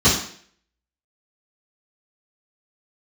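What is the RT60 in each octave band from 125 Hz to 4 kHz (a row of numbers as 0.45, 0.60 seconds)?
0.50, 0.55, 0.55, 0.50, 0.55, 0.55 seconds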